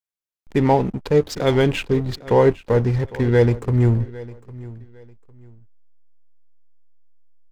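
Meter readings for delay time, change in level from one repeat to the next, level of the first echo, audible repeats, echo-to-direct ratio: 0.804 s, -11.5 dB, -19.0 dB, 2, -18.5 dB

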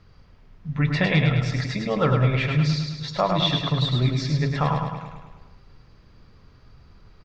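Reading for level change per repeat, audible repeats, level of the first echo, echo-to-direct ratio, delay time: -5.0 dB, 7, -4.5 dB, -3.0 dB, 0.105 s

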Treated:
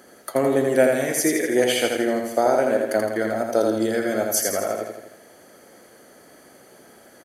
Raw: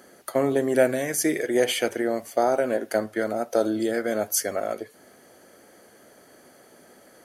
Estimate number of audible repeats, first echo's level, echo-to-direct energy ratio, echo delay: 6, -4.0 dB, -2.5 dB, 82 ms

